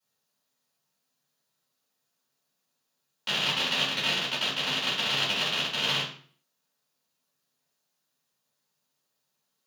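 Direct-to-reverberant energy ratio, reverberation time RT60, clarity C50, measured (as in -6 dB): -11.5 dB, 0.45 s, 4.5 dB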